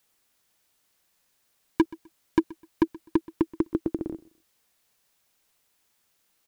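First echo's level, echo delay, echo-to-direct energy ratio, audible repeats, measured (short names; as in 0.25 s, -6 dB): -21.5 dB, 0.127 s, -21.0 dB, 2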